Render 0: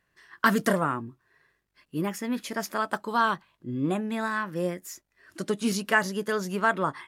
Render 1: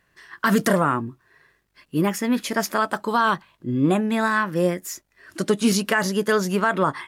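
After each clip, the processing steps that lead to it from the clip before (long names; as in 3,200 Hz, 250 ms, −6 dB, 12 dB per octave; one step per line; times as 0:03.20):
brickwall limiter −17 dBFS, peak gain reduction 9.5 dB
level +8 dB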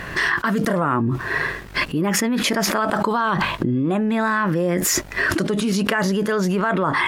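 high-shelf EQ 4,800 Hz −11 dB
envelope flattener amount 100%
level −5 dB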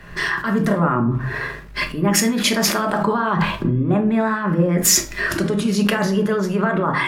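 rectangular room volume 520 cubic metres, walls furnished, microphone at 1.3 metres
multiband upward and downward expander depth 70%
level −1 dB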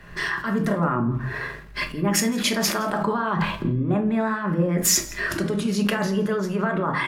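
single-tap delay 167 ms −22 dB
level −4.5 dB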